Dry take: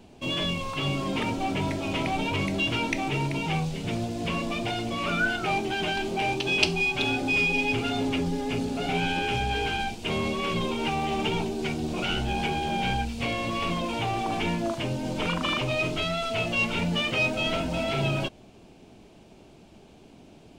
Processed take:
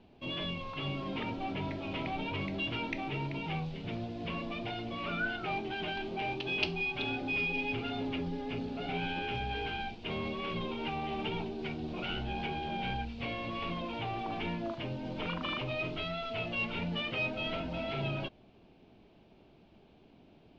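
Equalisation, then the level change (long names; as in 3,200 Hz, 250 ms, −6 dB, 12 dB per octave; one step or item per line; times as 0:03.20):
low-pass filter 4,200 Hz 24 dB per octave
−8.5 dB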